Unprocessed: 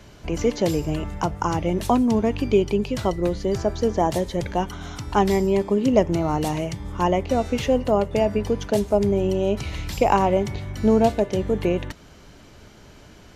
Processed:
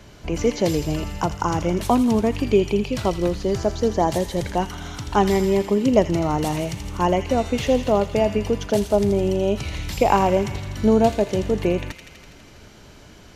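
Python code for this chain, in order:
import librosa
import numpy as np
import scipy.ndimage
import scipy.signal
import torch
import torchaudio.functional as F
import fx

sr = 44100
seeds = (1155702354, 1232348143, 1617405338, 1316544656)

y = fx.echo_wet_highpass(x, sr, ms=82, feedback_pct=75, hz=2100.0, wet_db=-6.5)
y = y * librosa.db_to_amplitude(1.0)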